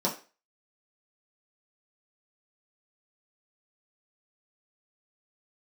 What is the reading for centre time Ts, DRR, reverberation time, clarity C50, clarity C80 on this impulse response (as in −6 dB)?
21 ms, −5.5 dB, 0.35 s, 11.0 dB, 16.0 dB